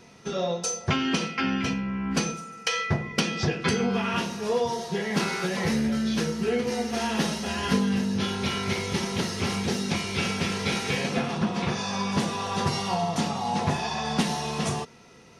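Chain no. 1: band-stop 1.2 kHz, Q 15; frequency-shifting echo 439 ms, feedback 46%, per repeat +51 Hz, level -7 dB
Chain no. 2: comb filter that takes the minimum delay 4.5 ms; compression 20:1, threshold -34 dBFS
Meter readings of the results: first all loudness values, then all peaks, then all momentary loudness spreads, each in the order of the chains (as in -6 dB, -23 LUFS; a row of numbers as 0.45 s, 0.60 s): -26.5 LUFS, -38.0 LUFS; -10.5 dBFS, -19.0 dBFS; 3 LU, 2 LU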